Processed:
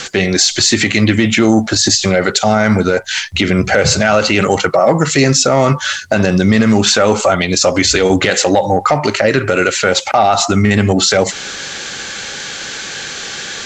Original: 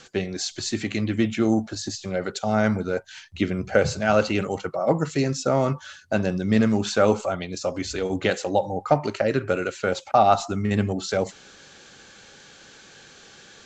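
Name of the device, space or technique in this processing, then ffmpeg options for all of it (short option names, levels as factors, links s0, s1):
mastering chain: -af "equalizer=f=2000:t=o:w=0.22:g=4,acompressor=threshold=0.0501:ratio=2,asoftclip=type=tanh:threshold=0.211,tiltshelf=f=970:g=-3.5,alimiter=level_in=12.6:limit=0.891:release=50:level=0:latency=1,volume=0.891"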